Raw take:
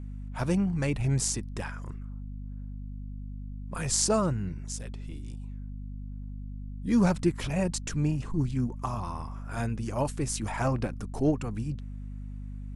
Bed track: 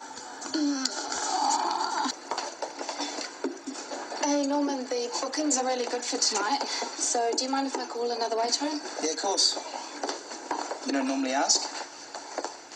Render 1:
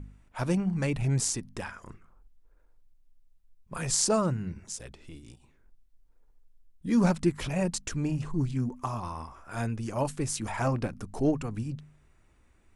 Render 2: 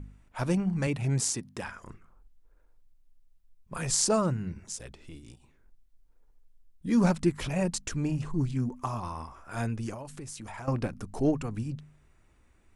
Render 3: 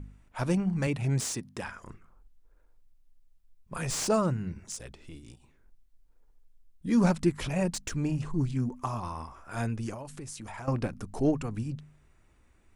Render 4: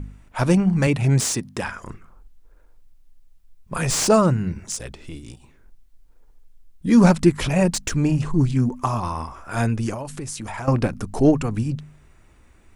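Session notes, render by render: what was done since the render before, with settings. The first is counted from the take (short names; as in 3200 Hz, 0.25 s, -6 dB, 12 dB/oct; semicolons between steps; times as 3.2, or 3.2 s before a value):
de-hum 50 Hz, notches 5
0.87–1.64 HPF 100 Hz; 9.94–10.68 compressor, threshold -38 dBFS
slew limiter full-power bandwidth 180 Hz
gain +10 dB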